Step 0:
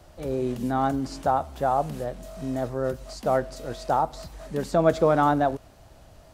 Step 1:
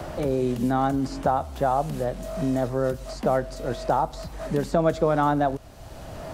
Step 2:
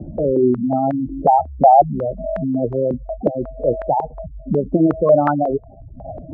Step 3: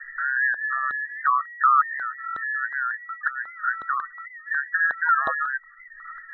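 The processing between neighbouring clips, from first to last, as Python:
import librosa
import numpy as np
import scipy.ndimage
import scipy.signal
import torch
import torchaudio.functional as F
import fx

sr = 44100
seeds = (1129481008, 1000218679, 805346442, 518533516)

y1 = fx.low_shelf(x, sr, hz=160.0, db=3.5)
y1 = fx.band_squash(y1, sr, depth_pct=70)
y2 = fx.spec_gate(y1, sr, threshold_db=-10, keep='strong')
y2 = fx.filter_held_lowpass(y2, sr, hz=5.5, low_hz=250.0, high_hz=1700.0)
y2 = y2 * librosa.db_to_amplitude(4.0)
y3 = fx.band_invert(y2, sr, width_hz=2000)
y3 = fx.record_warp(y3, sr, rpm=78.0, depth_cents=100.0)
y3 = y3 * librosa.db_to_amplitude(-8.0)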